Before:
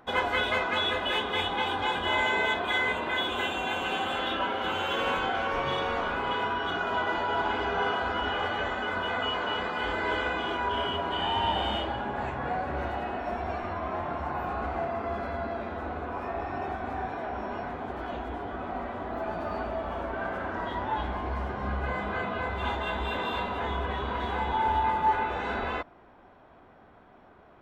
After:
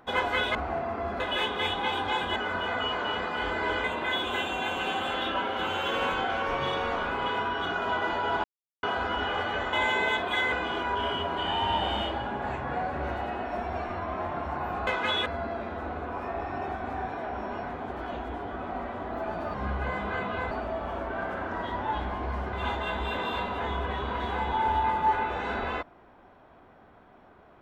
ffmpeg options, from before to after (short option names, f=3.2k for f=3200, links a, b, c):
-filter_complex "[0:a]asplit=14[a][b][c][d][e][f][g][h][i][j][k][l][m][n];[a]atrim=end=0.552[o];[b]atrim=start=14.608:end=15.262[p];[c]atrim=start=0.938:end=2.102[q];[d]atrim=start=8.778:end=10.262[r];[e]atrim=start=2.888:end=7.49,asetpts=PTS-STARTPTS,afade=t=out:st=4.598:d=0.004:c=hsin[s];[f]atrim=start=7.49:end=7.88,asetpts=PTS-STARTPTS,volume=0[t];[g]atrim=start=7.88:end=8.782,asetpts=PTS-STARTPTS,afade=t=in:d=0.004:c=hsin[u];[h]atrim=start=2.098:end=2.892[v];[i]atrim=start=10.258:end=14.612[w];[j]atrim=start=0.548:end=0.942[x];[k]atrim=start=15.258:end=19.542[y];[l]atrim=start=21.558:end=22.532[z];[m]atrim=start=19.538:end=21.562[aa];[n]atrim=start=22.528[ab];[o][p]acrossfade=d=0.004:c1=hsin:c2=hsin[ac];[ac][q]acrossfade=d=0.004:c1=hsin:c2=hsin[ad];[ad][r]acrossfade=d=0.004:c1=hsin:c2=hsin[ae];[s][t][u]concat=n=3:v=0:a=1[af];[ae][af]acrossfade=d=0.004:c1=hsin:c2=hsin[ag];[ag][v]acrossfade=d=0.004:c1=hsin:c2=hsin[ah];[ah][w]acrossfade=d=0.004:c1=hsin:c2=hsin[ai];[ai][x]acrossfade=d=0.004:c1=hsin:c2=hsin[aj];[aj][y]acrossfade=d=0.004:c1=hsin:c2=hsin[ak];[ak][z]acrossfade=d=0.004:c1=hsin:c2=hsin[al];[al][aa]acrossfade=d=0.004:c1=hsin:c2=hsin[am];[am][ab]acrossfade=d=0.004:c1=hsin:c2=hsin"